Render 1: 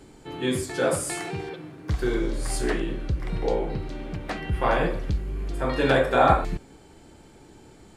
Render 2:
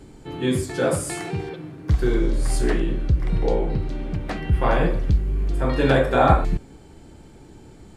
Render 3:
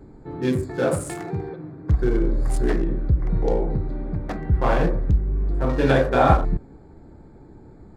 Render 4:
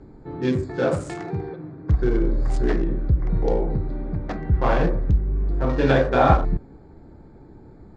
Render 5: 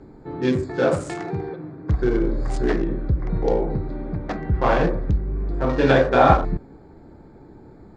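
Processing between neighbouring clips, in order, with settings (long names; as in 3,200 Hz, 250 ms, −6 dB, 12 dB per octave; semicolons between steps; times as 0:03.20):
low-shelf EQ 280 Hz +8 dB
adaptive Wiener filter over 15 samples
low-pass filter 6,600 Hz 24 dB per octave
low-shelf EQ 140 Hz −6.5 dB; level +3 dB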